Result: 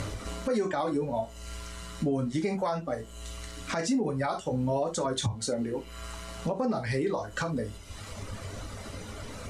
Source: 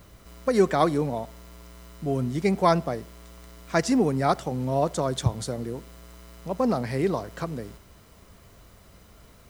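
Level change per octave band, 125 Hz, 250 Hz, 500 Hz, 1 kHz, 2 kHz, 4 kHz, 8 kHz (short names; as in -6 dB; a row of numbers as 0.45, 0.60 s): -4.5, -4.0, -4.5, -6.5, -2.5, -0.5, +0.5 dB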